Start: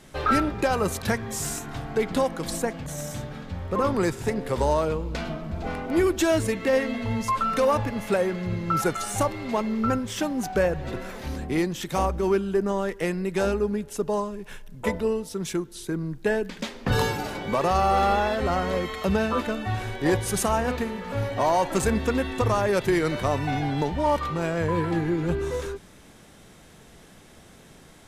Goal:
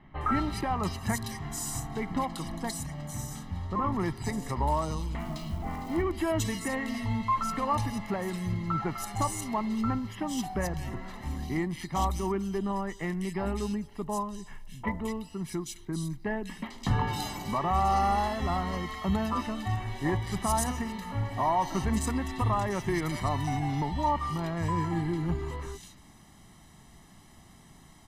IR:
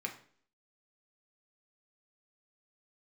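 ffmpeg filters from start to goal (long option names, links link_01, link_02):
-filter_complex "[0:a]aecho=1:1:1:0.73,asplit=3[link_01][link_02][link_03];[link_01]afade=type=out:start_time=4.97:duration=0.02[link_04];[link_02]acrusher=bits=6:mode=log:mix=0:aa=0.000001,afade=type=in:start_time=4.97:duration=0.02,afade=type=out:start_time=5.8:duration=0.02[link_05];[link_03]afade=type=in:start_time=5.8:duration=0.02[link_06];[link_04][link_05][link_06]amix=inputs=3:normalize=0,acrossover=split=2600[link_07][link_08];[link_08]adelay=210[link_09];[link_07][link_09]amix=inputs=2:normalize=0,volume=-6dB"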